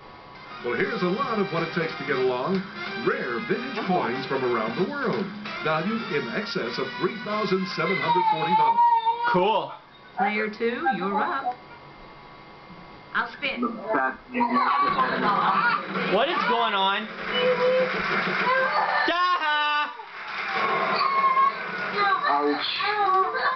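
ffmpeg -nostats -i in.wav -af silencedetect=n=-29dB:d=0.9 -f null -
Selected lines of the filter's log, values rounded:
silence_start: 11.52
silence_end: 13.15 | silence_duration: 1.63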